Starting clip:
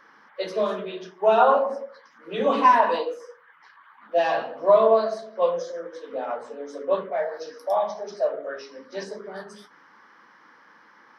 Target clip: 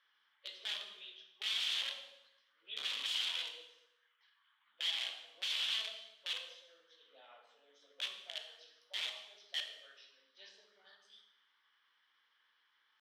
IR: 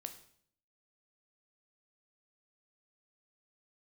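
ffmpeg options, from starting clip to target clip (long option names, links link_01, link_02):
-filter_complex "[0:a]aeval=exprs='(mod(7.94*val(0)+1,2)-1)/7.94':channel_layout=same,bandpass=frequency=3300:width_type=q:width=5.7:csg=0,atempo=0.86[link_01];[1:a]atrim=start_sample=2205,asetrate=29547,aresample=44100[link_02];[link_01][link_02]afir=irnorm=-1:irlink=0,volume=-1.5dB"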